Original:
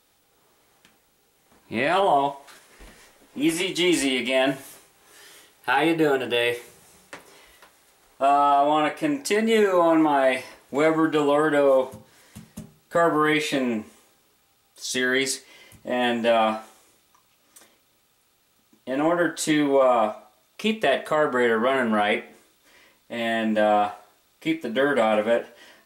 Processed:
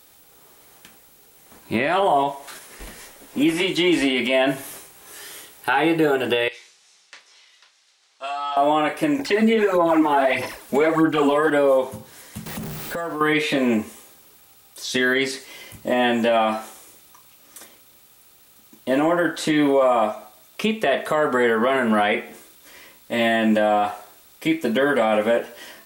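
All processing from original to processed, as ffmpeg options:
-filter_complex "[0:a]asettb=1/sr,asplit=3[s0][s1][s2];[s0]atrim=end=6.484[s3];[s1]atrim=start=6.48:end=8.57,asetpts=PTS-STARTPTS,afade=t=in:d=0.004:c=qsin,afade=t=out:st=2.086:d=0.004:c=qsin,lowpass=f=5300:w=0.5412,lowpass=f=5300:w=1.3066,aderivative,asplit=2[s4][s5];[s5]adelay=34,volume=0.376[s6];[s4][s6]amix=inputs=2:normalize=0,atrim=end_sample=92169[s7];[s2]atrim=start=8.566[s8];[s3][s7]acrossfade=d=0.004:c1=hsin:c2=qsin[s9];[s9][s8]acrossfade=d=0.004:c1=qsin:c2=hsin,asettb=1/sr,asplit=3[s10][s11][s12];[s10]atrim=end=9.194[s13];[s11]atrim=start=9.19:end=11.5,asetpts=PTS-STARTPTS,afade=t=in:d=0.004:c=qsin,afade=t=out:st=2.306:d=0.004:c=qsin,acrossover=split=5200[s14][s15];[s15]acompressor=threshold=0.00447:ratio=4:attack=1:release=60[s16];[s14][s16]amix=inputs=2:normalize=0,aphaser=in_gain=1:out_gain=1:delay=4.9:decay=0.62:speed=1.6:type=sinusoidal[s17];[s12]atrim=start=11.496[s18];[s13][s17]acrossfade=d=0.004:c1=hsin:c2=qsin[s19];[s19][s18]acrossfade=d=0.004:c1=qsin:c2=hsin,asettb=1/sr,asplit=3[s20][s21][s22];[s20]atrim=end=12.464[s23];[s21]atrim=start=12.46:end=13.21,asetpts=PTS-STARTPTS,afade=t=in:d=0.004:c=qsin,afade=t=out:st=0.746:d=0.004:c=qsin,aeval=exprs='val(0)+0.5*0.0168*sgn(val(0))':c=same,acompressor=threshold=0.0178:ratio=5:attack=3.2:release=140:knee=1:detection=peak[s24];[s22]atrim=start=13.206[s25];[s23][s24]acrossfade=d=0.004:c1=hsin:c2=qsin[s26];[s26][s25]acrossfade=d=0.004:c1=qsin:c2=hsin,acrossover=split=3800[s27][s28];[s28]acompressor=threshold=0.00447:ratio=4:attack=1:release=60[s29];[s27][s29]amix=inputs=2:normalize=0,highshelf=f=9800:g=10,alimiter=limit=0.126:level=0:latency=1:release=198,volume=2.51"

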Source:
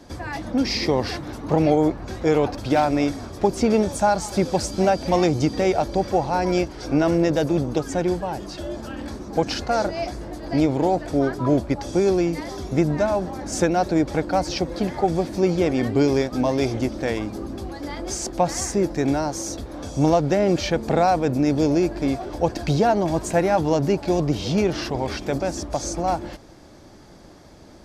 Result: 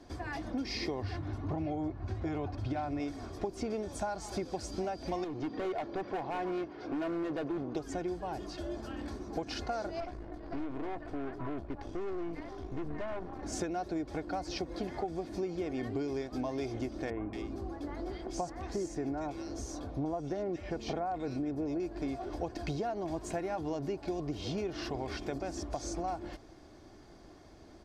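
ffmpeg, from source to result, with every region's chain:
-filter_complex "[0:a]asettb=1/sr,asplit=3[s0][s1][s2];[s0]atrim=end=1.024[s3];[s1]atrim=start=1.02:end=3,asetpts=PTS-STARTPTS,afade=t=in:d=0.004:c=qsin,afade=t=out:st=1.976:d=0.004:c=qsin,lowpass=f=3400:p=1,equalizer=f=96:w=1.9:g=14.5,bandreject=f=470:w=7.1[s4];[s2]atrim=start=2.996[s5];[s3][s4]acrossfade=d=0.004:c1=hsin:c2=qsin[s6];[s6][s5]acrossfade=d=0.004:c1=qsin:c2=hsin,asettb=1/sr,asplit=3[s7][s8][s9];[s7]atrim=end=5.244[s10];[s8]atrim=start=5.24:end=7.75,asetpts=PTS-STARTPTS,afade=t=in:d=0.004:c=qsin,afade=t=out:st=2.506:d=0.004:c=qsin,highpass=160,lowpass=2700,asoftclip=type=hard:threshold=0.0944[s11];[s9]atrim=start=7.746[s12];[s10][s11]acrossfade=d=0.004:c1=hsin:c2=qsin[s13];[s13][s12]acrossfade=d=0.004:c1=qsin:c2=hsin,asettb=1/sr,asplit=3[s14][s15][s16];[s14]atrim=end=10.004[s17];[s15]atrim=start=10:end=13.43,asetpts=PTS-STARTPTS,afade=t=in:d=0.004:c=qsin,afade=t=out:st=3.426:d=0.004:c=qsin,aeval=exprs='(tanh(17.8*val(0)+0.8)-tanh(0.8))/17.8':c=same,bass=f=250:g=1,treble=f=4000:g=-12[s18];[s16]atrim=start=13.426[s19];[s17][s18]acrossfade=d=0.004:c1=hsin:c2=qsin[s20];[s20][s19]acrossfade=d=0.004:c1=qsin:c2=hsin,asettb=1/sr,asplit=3[s21][s22][s23];[s21]atrim=end=17.104[s24];[s22]atrim=start=17.1:end=21.8,asetpts=PTS-STARTPTS,afade=t=in:d=0.004:c=qsin,afade=t=out:st=4.696:d=0.004:c=qsin,highshelf=f=4200:g=-6.5,acrossover=split=2100[s25][s26];[s26]adelay=230[s27];[s25][s27]amix=inputs=2:normalize=0,atrim=end_sample=207270[s28];[s23]atrim=start=21.796[s29];[s24][s28]acrossfade=d=0.004:c1=hsin:c2=qsin[s30];[s30][s29]acrossfade=d=0.004:c1=qsin:c2=hsin,highshelf=f=7900:g=-8.5,aecho=1:1:2.8:0.36,acompressor=threshold=0.0631:ratio=6,volume=0.376"

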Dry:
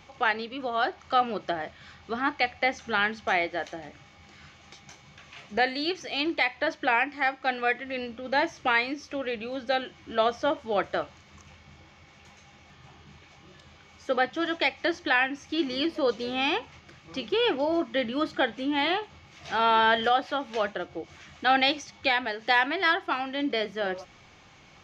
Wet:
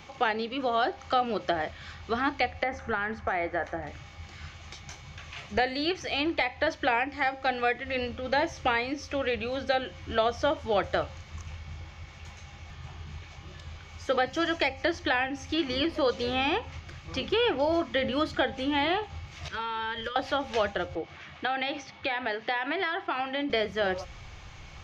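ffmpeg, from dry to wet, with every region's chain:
-filter_complex "[0:a]asettb=1/sr,asplit=3[s0][s1][s2];[s0]atrim=end=2.634[s3];[s1]atrim=start=2.63:end=3.87,asetpts=PTS-STARTPTS,afade=t=in:d=0.004:c=qsin,afade=t=out:st=1.236:d=0.004:c=qsin,highshelf=f=2300:t=q:w=1.5:g=-11,acompressor=threshold=0.0447:ratio=4:attack=3.2:release=140:knee=1:detection=peak[s4];[s2]atrim=start=3.866[s5];[s3][s4]acrossfade=d=0.004:c1=hsin:c2=qsin[s6];[s6][s5]acrossfade=d=0.004:c1=qsin:c2=hsin,asettb=1/sr,asplit=3[s7][s8][s9];[s7]atrim=end=14.264[s10];[s8]atrim=start=14.26:end=14.83,asetpts=PTS-STARTPTS,afade=t=in:d=0.004:c=qsin,afade=t=out:st=0.566:d=0.004:c=qsin,highshelf=f=4400:g=8.5,bandreject=f=3600:w=6.3[s11];[s9]atrim=start=14.826[s12];[s10][s11]acrossfade=d=0.004:c1=hsin:c2=qsin[s13];[s13][s12]acrossfade=d=0.004:c1=qsin:c2=hsin,asettb=1/sr,asplit=3[s14][s15][s16];[s14]atrim=end=19.484[s17];[s15]atrim=start=19.48:end=20.16,asetpts=PTS-STARTPTS,afade=t=in:d=0.004:c=qsin,afade=t=out:st=0.676:d=0.004:c=qsin,agate=range=0.282:threshold=0.0316:ratio=16:release=100:detection=peak,acompressor=threshold=0.0251:ratio=12:attack=3.2:release=140:knee=1:detection=peak,asuperstop=centerf=750:order=20:qfactor=3.2[s18];[s16]atrim=start=20.156[s19];[s17][s18]acrossfade=d=0.004:c1=hsin:c2=qsin[s20];[s20][s19]acrossfade=d=0.004:c1=qsin:c2=hsin,asettb=1/sr,asplit=3[s21][s22][s23];[s21]atrim=end=20.954[s24];[s22]atrim=start=20.95:end=23.5,asetpts=PTS-STARTPTS,afade=t=in:d=0.004:c=qsin,afade=t=out:st=2.546:d=0.004:c=qsin,acompressor=threshold=0.0447:ratio=6:attack=3.2:release=140:knee=1:detection=peak,highpass=170,lowpass=3500[s25];[s23]atrim=start=23.496[s26];[s24][s25]acrossfade=d=0.004:c1=hsin:c2=qsin[s27];[s27][s26]acrossfade=d=0.004:c1=qsin:c2=hsin,bandreject=f=266.5:t=h:w=4,bandreject=f=533:t=h:w=4,bandreject=f=799.5:t=h:w=4,asubboost=boost=7.5:cutoff=81,acrossover=split=690|2900[s28][s29][s30];[s28]acompressor=threshold=0.0316:ratio=4[s31];[s29]acompressor=threshold=0.02:ratio=4[s32];[s30]acompressor=threshold=0.00708:ratio=4[s33];[s31][s32][s33]amix=inputs=3:normalize=0,volume=1.68"

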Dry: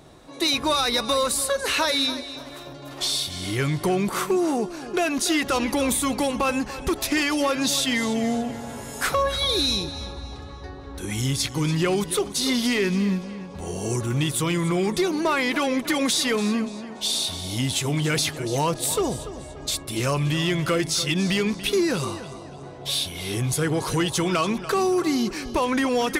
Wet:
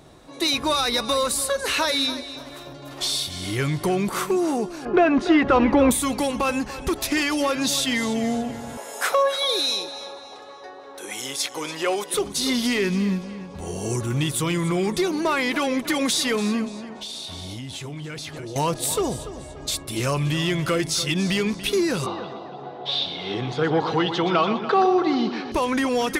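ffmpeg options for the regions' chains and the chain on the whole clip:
-filter_complex "[0:a]asettb=1/sr,asplit=3[s0][s1][s2];[s0]atrim=end=4.854[s3];[s1]atrim=start=4.85:end=5.91,asetpts=PTS-STARTPTS,afade=t=in:d=0.004:c=qsin,afade=t=out:st=1.056:d=0.004:c=qsin,lowpass=1700,acontrast=86[s4];[s2]atrim=start=5.906[s5];[s3][s4]acrossfade=d=0.004:c1=hsin:c2=qsin[s6];[s6][s5]acrossfade=d=0.004:c1=qsin:c2=hsin,asettb=1/sr,asplit=3[s7][s8][s9];[s7]atrim=end=8.774[s10];[s8]atrim=start=8.77:end=12.14,asetpts=PTS-STARTPTS,afade=t=in:d=0.004:c=qsin,afade=t=out:st=3.366:d=0.004:c=qsin,highpass=f=550:t=q:w=1.6,bandreject=f=4500:w=20[s11];[s9]atrim=start=12.136[s12];[s10][s11]acrossfade=d=0.004:c1=hsin:c2=qsin[s13];[s13][s12]acrossfade=d=0.004:c1=qsin:c2=hsin,asettb=1/sr,asplit=3[s14][s15][s16];[s14]atrim=end=16.894[s17];[s15]atrim=start=16.89:end=18.56,asetpts=PTS-STARTPTS,afade=t=in:d=0.004:c=qsin,afade=t=out:st=1.666:d=0.004:c=qsin,highshelf=f=8300:g=-11.5,acompressor=threshold=0.0316:ratio=12:attack=3.2:release=140:knee=1:detection=peak[s18];[s16]atrim=start=18.556[s19];[s17][s18]acrossfade=d=0.004:c1=hsin:c2=qsin[s20];[s20][s19]acrossfade=d=0.004:c1=qsin:c2=hsin,asettb=1/sr,asplit=3[s21][s22][s23];[s21]atrim=end=22.064[s24];[s22]atrim=start=22.06:end=25.52,asetpts=PTS-STARTPTS,afade=t=in:d=0.004:c=qsin,afade=t=out:st=3.456:d=0.004:c=qsin,highpass=f=130:w=0.5412,highpass=f=130:w=1.3066,equalizer=f=140:t=q:w=4:g=-4,equalizer=f=460:t=q:w=4:g=4,equalizer=f=790:t=q:w=4:g=10,equalizer=f=1300:t=q:w=4:g=4,equalizer=f=2400:t=q:w=4:g=-3,equalizer=f=3600:t=q:w=4:g=4,lowpass=f=4100:w=0.5412,lowpass=f=4100:w=1.3066,aecho=1:1:122:0.335,atrim=end_sample=152586[s25];[s23]atrim=start=25.516[s26];[s24][s25]acrossfade=d=0.004:c1=hsin:c2=qsin[s27];[s27][s26]acrossfade=d=0.004:c1=qsin:c2=hsin"

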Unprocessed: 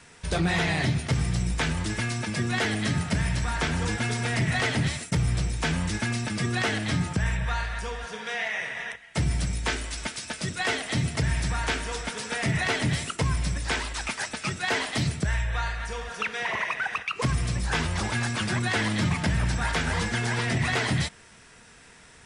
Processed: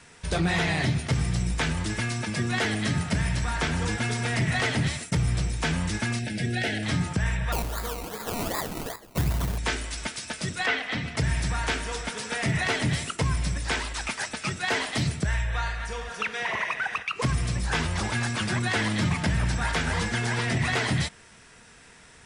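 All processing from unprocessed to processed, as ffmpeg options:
-filter_complex "[0:a]asettb=1/sr,asplit=3[s0][s1][s2];[s0]atrim=end=6.194[s3];[s1]atrim=start=6.19:end=6.83,asetpts=PTS-STARTPTS,afade=t=in:d=0.004:c=qsin,afade=t=out:st=0.636:d=0.004:c=qsin,asuperstop=centerf=1100:order=4:qfactor=1.4,equalizer=f=6700:t=o:w=0.92:g=-6.5,bandreject=f=50:t=h:w=6,bandreject=f=100:t=h:w=6,bandreject=f=150:t=h:w=6,bandreject=f=200:t=h:w=6,bandreject=f=250:t=h:w=6,bandreject=f=300:t=h:w=6,bandreject=f=350:t=h:w=6,bandreject=f=400:t=h:w=6,bandreject=f=450:t=h:w=6,bandreject=f=500:t=h:w=6[s4];[s2]atrim=start=6.826[s5];[s3][s4]acrossfade=d=0.004:c1=hsin:c2=qsin[s6];[s6][s5]acrossfade=d=0.004:c1=qsin:c2=hsin,asettb=1/sr,asplit=3[s7][s8][s9];[s7]atrim=end=7.524[s10];[s8]atrim=start=7.52:end=9.58,asetpts=PTS-STARTPTS,afade=t=in:d=0.004:c=qsin,afade=t=out:st=2.056:d=0.004:c=qsin,acrusher=samples=21:mix=1:aa=0.000001:lfo=1:lforange=12.6:lforate=2.6,highshelf=f=7200:g=9.5[s11];[s9]atrim=start=9.576[s12];[s10][s11]acrossfade=d=0.004:c1=hsin:c2=qsin[s13];[s13][s12]acrossfade=d=0.004:c1=qsin:c2=hsin,asettb=1/sr,asplit=3[s14][s15][s16];[s14]atrim=end=10.664[s17];[s15]atrim=start=10.66:end=11.17,asetpts=PTS-STARTPTS,afade=t=in:d=0.004:c=qsin,afade=t=out:st=0.506:d=0.004:c=qsin,lowpass=2600,tiltshelf=f=800:g=-5.5,aecho=1:1:4:0.36,atrim=end_sample=22491[s18];[s16]atrim=start=11.166[s19];[s17][s18]acrossfade=d=0.004:c1=hsin:c2=qsin[s20];[s20][s19]acrossfade=d=0.004:c1=qsin:c2=hsin"

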